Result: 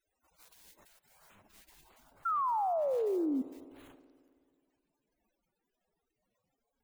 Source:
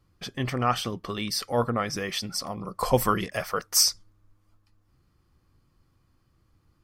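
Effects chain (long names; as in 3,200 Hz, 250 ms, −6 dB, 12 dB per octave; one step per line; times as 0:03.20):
spike at every zero crossing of −16.5 dBFS
gate on every frequency bin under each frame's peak −30 dB weak
tilt shelving filter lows +4 dB, about 1,300 Hz, from 0:01.34 lows +8.5 dB
transient designer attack −6 dB, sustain +9 dB
downward compressor 2 to 1, threshold −58 dBFS, peak gain reduction 10.5 dB
0:02.25–0:03.42: sound drawn into the spectrogram fall 250–1,400 Hz −26 dBFS
spring reverb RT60 2.2 s, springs 53 ms, chirp 35 ms, DRR 15.5 dB
level −5 dB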